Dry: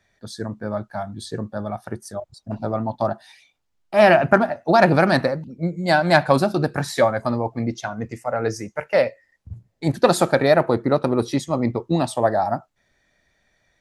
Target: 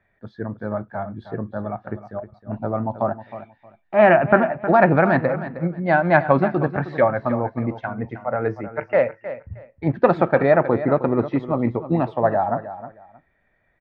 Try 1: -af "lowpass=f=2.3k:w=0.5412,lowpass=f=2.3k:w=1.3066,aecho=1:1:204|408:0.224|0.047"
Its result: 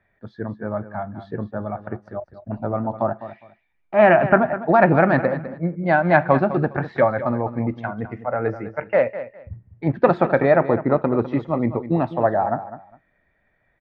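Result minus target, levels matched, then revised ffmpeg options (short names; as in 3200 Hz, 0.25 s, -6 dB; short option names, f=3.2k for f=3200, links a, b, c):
echo 0.109 s early
-af "lowpass=f=2.3k:w=0.5412,lowpass=f=2.3k:w=1.3066,aecho=1:1:313|626:0.224|0.047"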